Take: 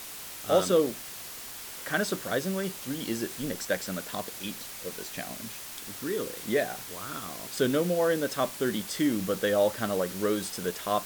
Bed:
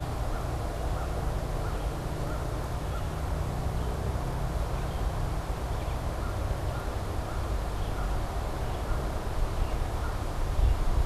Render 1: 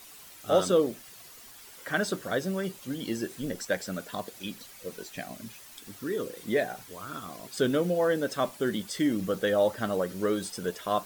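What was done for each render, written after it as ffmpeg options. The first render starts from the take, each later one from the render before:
ffmpeg -i in.wav -af "afftdn=noise_reduction=10:noise_floor=-42" out.wav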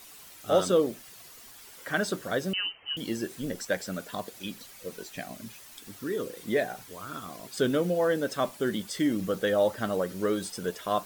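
ffmpeg -i in.wav -filter_complex "[0:a]asettb=1/sr,asplit=3[link_01][link_02][link_03];[link_01]atrim=end=2.534[link_04];[link_02]atrim=start=2.53:end=2.97,asetpts=PTS-STARTPTS,afade=type=in:duration=0.004:curve=qsin,afade=type=out:start_time=0.436:duration=0.004:curve=qsin,lowpass=frequency=2700:width_type=q:width=0.5098,lowpass=frequency=2700:width_type=q:width=0.6013,lowpass=frequency=2700:width_type=q:width=0.9,lowpass=frequency=2700:width_type=q:width=2.563,afreqshift=-3200[link_05];[link_03]atrim=start=2.966[link_06];[link_04][link_05]acrossfade=duration=0.004:curve1=hsin:curve2=qsin[link_07];[link_07][link_06]acrossfade=duration=0.004:curve1=qsin:curve2=hsin" out.wav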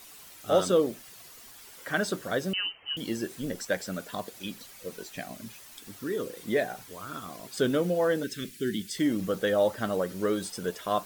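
ffmpeg -i in.wav -filter_complex "[0:a]asplit=3[link_01][link_02][link_03];[link_01]afade=type=out:start_time=8.22:duration=0.02[link_04];[link_02]asuperstop=centerf=820:order=8:qfactor=0.66,afade=type=in:start_time=8.22:duration=0.02,afade=type=out:start_time=8.97:duration=0.02[link_05];[link_03]afade=type=in:start_time=8.97:duration=0.02[link_06];[link_04][link_05][link_06]amix=inputs=3:normalize=0" out.wav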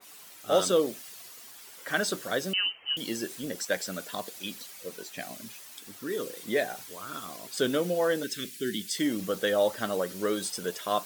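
ffmpeg -i in.wav -af "highpass=frequency=230:poles=1,adynamicequalizer=threshold=0.00562:dfrequency=2400:dqfactor=0.7:tfrequency=2400:tqfactor=0.7:attack=5:release=100:ratio=0.375:range=2.5:mode=boostabove:tftype=highshelf" out.wav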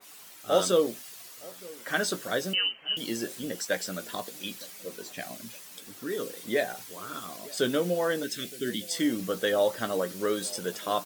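ffmpeg -i in.wav -filter_complex "[0:a]asplit=2[link_01][link_02];[link_02]adelay=17,volume=-11dB[link_03];[link_01][link_03]amix=inputs=2:normalize=0,asplit=2[link_04][link_05];[link_05]adelay=915,lowpass=frequency=870:poles=1,volume=-20.5dB,asplit=2[link_06][link_07];[link_07]adelay=915,lowpass=frequency=870:poles=1,volume=0.53,asplit=2[link_08][link_09];[link_09]adelay=915,lowpass=frequency=870:poles=1,volume=0.53,asplit=2[link_10][link_11];[link_11]adelay=915,lowpass=frequency=870:poles=1,volume=0.53[link_12];[link_04][link_06][link_08][link_10][link_12]amix=inputs=5:normalize=0" out.wav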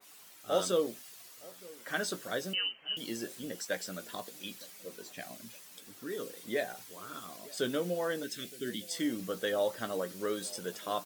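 ffmpeg -i in.wav -af "volume=-6dB" out.wav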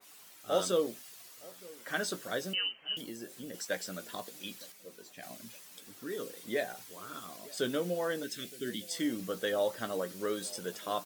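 ffmpeg -i in.wav -filter_complex "[0:a]asettb=1/sr,asplit=3[link_01][link_02][link_03];[link_01]atrim=end=3.014[link_04];[link_02]atrim=start=3.01:end=3.54,asetpts=PTS-STARTPTS,afade=type=in:duration=0.004:curve=qsin,afade=type=out:start_time=0.526:duration=0.004:curve=qsin,acrossover=split=1800|7000[link_05][link_06][link_07];[link_05]acompressor=threshold=-41dB:ratio=4[link_08];[link_06]acompressor=threshold=-56dB:ratio=4[link_09];[link_07]acompressor=threshold=-52dB:ratio=4[link_10];[link_08][link_09][link_10]amix=inputs=3:normalize=0[link_11];[link_03]atrim=start=3.536[link_12];[link_04][link_11]acrossfade=duration=0.004:curve1=hsin:curve2=qsin[link_13];[link_13][link_12]acrossfade=duration=0.004:curve1=qsin:curve2=hsin,asplit=3[link_14][link_15][link_16];[link_14]atrim=end=4.722[link_17];[link_15]atrim=start=4.718:end=5.232,asetpts=PTS-STARTPTS,volume=-5dB[link_18];[link_16]atrim=start=5.228[link_19];[link_17][link_18]acrossfade=duration=0.004:curve1=hsin:curve2=hsin[link_20];[link_20][link_19]acrossfade=duration=0.004:curve1=hsin:curve2=hsin" out.wav

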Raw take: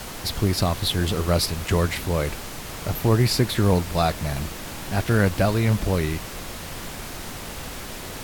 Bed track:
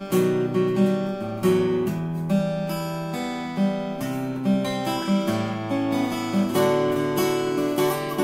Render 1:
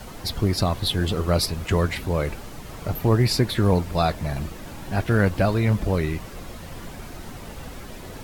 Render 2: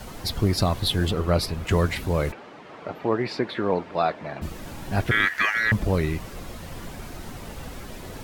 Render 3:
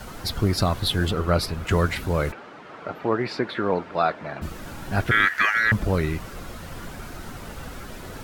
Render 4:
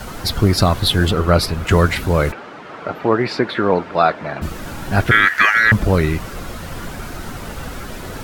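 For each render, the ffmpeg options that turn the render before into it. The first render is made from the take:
ffmpeg -i in.wav -af "afftdn=noise_reduction=9:noise_floor=-35" out.wav
ffmpeg -i in.wav -filter_complex "[0:a]asettb=1/sr,asplit=3[link_01][link_02][link_03];[link_01]atrim=end=1.114[link_04];[link_02]atrim=start=1.11:end=1.67,asetpts=PTS-STARTPTS,afade=type=in:duration=0.004:curve=qsin,afade=type=out:start_time=0.556:duration=0.004:curve=qsin,bass=frequency=250:gain=-1,treble=frequency=4000:gain=-7[link_05];[link_03]atrim=start=1.666[link_06];[link_04][link_05]acrossfade=duration=0.004:curve1=hsin:curve2=qsin[link_07];[link_07][link_06]acrossfade=duration=0.004:curve1=qsin:curve2=hsin,asplit=3[link_08][link_09][link_10];[link_08]afade=type=out:start_time=2.31:duration=0.02[link_11];[link_09]highpass=300,lowpass=2600,afade=type=in:start_time=2.31:duration=0.02,afade=type=out:start_time=4.41:duration=0.02[link_12];[link_10]afade=type=in:start_time=4.41:duration=0.02[link_13];[link_11][link_12][link_13]amix=inputs=3:normalize=0,asettb=1/sr,asplit=3[link_14][link_15][link_16];[link_14]atrim=end=5.114[link_17];[link_15]atrim=start=5.11:end=5.72,asetpts=PTS-STARTPTS,afade=type=in:duration=0.004:curve=qsin,afade=type=out:start_time=0.606:duration=0.004:curve=qsin,aeval=exprs='val(0)*sin(2*PI*1800*n/s)':channel_layout=same[link_18];[link_16]atrim=start=5.716[link_19];[link_17][link_18]acrossfade=duration=0.004:curve1=hsin:curve2=qsin[link_20];[link_20][link_19]acrossfade=duration=0.004:curve1=qsin:curve2=hsin" out.wav
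ffmpeg -i in.wav -af "equalizer=frequency=1400:width_type=o:width=0.42:gain=6.5" out.wav
ffmpeg -i in.wav -af "volume=7.5dB,alimiter=limit=-1dB:level=0:latency=1" out.wav

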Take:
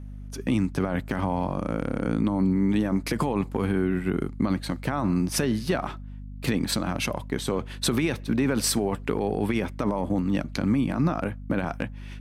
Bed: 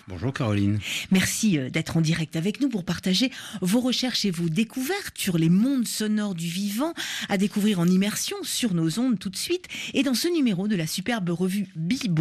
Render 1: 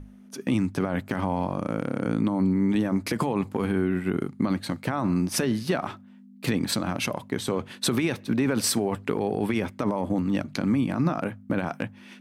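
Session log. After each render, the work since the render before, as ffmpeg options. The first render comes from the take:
ffmpeg -i in.wav -af "bandreject=frequency=50:width_type=h:width=6,bandreject=frequency=100:width_type=h:width=6,bandreject=frequency=150:width_type=h:width=6" out.wav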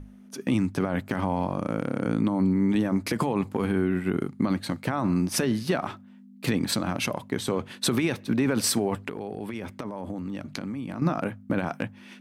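ffmpeg -i in.wav -filter_complex "[0:a]asettb=1/sr,asplit=3[link_01][link_02][link_03];[link_01]atrim=end=9.084[link_04];[link_02]atrim=start=9.08:end=11.02,asetpts=PTS-STARTPTS,afade=type=in:duration=0.004:curve=qsin,afade=type=out:start_time=1.936:duration=0.004:curve=qsin,acompressor=threshold=-29dB:ratio=12:attack=3.2:release=140:knee=1:detection=peak[link_05];[link_03]atrim=start=11.016[link_06];[link_04][link_05]acrossfade=duration=0.004:curve1=hsin:curve2=qsin[link_07];[link_07][link_06]acrossfade=duration=0.004:curve1=qsin:curve2=hsin" out.wav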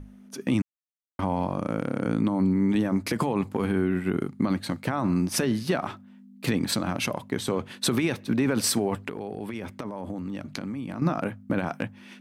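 ffmpeg -i in.wav -filter_complex "[0:a]asplit=3[link_01][link_02][link_03];[link_01]atrim=end=0.62,asetpts=PTS-STARTPTS,afade=type=out:start_time=0.616:duration=0.004:curve=hsin[link_04];[link_02]atrim=start=0.62:end=1.19,asetpts=PTS-STARTPTS,volume=0[link_05];[link_03]atrim=start=1.19,asetpts=PTS-STARTPTS,afade=type=in:duration=0.004:curve=hsin[link_06];[link_04][link_05][link_06]concat=n=3:v=0:a=1" out.wav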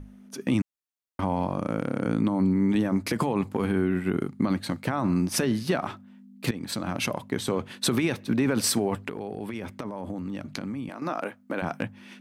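ffmpeg -i in.wav -filter_complex "[0:a]asettb=1/sr,asplit=3[link_01][link_02][link_03];[link_01]atrim=end=10.894[link_04];[link_02]atrim=start=10.89:end=11.62,asetpts=PTS-STARTPTS,afade=type=in:duration=0.004:curve=qsin,afade=type=out:start_time=0.726:duration=0.004:curve=qsin,highpass=370[link_05];[link_03]atrim=start=11.616[link_06];[link_04][link_05]acrossfade=duration=0.004:curve1=hsin:curve2=qsin[link_07];[link_07][link_06]acrossfade=duration=0.004:curve1=qsin:curve2=hsin,asplit=2[link_08][link_09];[link_08]atrim=end=6.51,asetpts=PTS-STARTPTS,afade=type=out:start_time=6.506:duration=0.004:curve=hsin:silence=0.199526[link_10];[link_09]atrim=start=6.51,asetpts=PTS-STARTPTS,afade=type=in:duration=0.51:silence=0.199526[link_11];[link_10][link_11]concat=n=2:v=0:a=1" out.wav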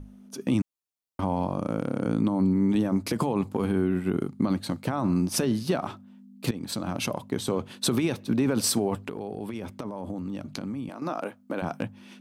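ffmpeg -i in.wav -af "equalizer=frequency=1900:width_type=o:width=0.87:gain=-7" out.wav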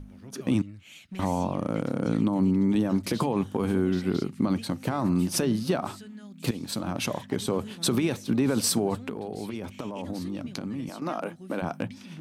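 ffmpeg -i in.wav -i bed.wav -filter_complex "[1:a]volume=-20dB[link_01];[0:a][link_01]amix=inputs=2:normalize=0" out.wav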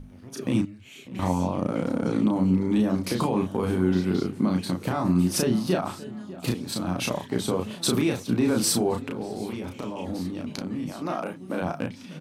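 ffmpeg -i in.wav -filter_complex "[0:a]asplit=2[link_01][link_02];[link_02]adelay=33,volume=-3dB[link_03];[link_01][link_03]amix=inputs=2:normalize=0,asplit=2[link_04][link_05];[link_05]adelay=597,lowpass=frequency=1900:poles=1,volume=-17.5dB,asplit=2[link_06][link_07];[link_07]adelay=597,lowpass=frequency=1900:poles=1,volume=0.48,asplit=2[link_08][link_09];[link_09]adelay=597,lowpass=frequency=1900:poles=1,volume=0.48,asplit=2[link_10][link_11];[link_11]adelay=597,lowpass=frequency=1900:poles=1,volume=0.48[link_12];[link_04][link_06][link_08][link_10][link_12]amix=inputs=5:normalize=0" out.wav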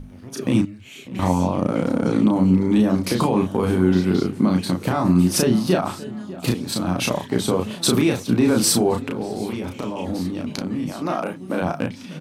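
ffmpeg -i in.wav -af "volume=5.5dB" out.wav

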